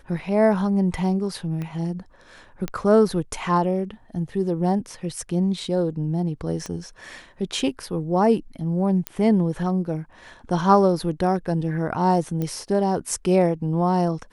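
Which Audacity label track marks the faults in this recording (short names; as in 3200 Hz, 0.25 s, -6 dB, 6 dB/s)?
1.620000	1.620000	pop -20 dBFS
2.680000	2.680000	pop -14 dBFS
6.660000	6.660000	pop -18 dBFS
9.070000	9.070000	pop -9 dBFS
12.420000	12.420000	pop -16 dBFS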